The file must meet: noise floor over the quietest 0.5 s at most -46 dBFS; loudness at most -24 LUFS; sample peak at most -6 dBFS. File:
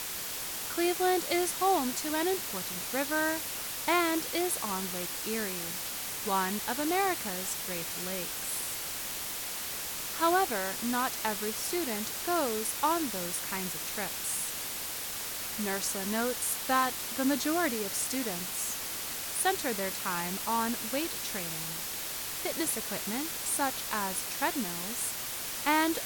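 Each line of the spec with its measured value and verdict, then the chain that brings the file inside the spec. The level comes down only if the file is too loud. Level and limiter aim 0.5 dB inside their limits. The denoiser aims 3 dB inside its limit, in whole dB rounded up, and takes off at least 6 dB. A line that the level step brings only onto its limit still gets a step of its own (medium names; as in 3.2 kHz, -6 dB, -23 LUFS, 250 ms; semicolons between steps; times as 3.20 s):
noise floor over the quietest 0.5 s -37 dBFS: fail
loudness -31.0 LUFS: pass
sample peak -14.0 dBFS: pass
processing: noise reduction 12 dB, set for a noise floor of -37 dBFS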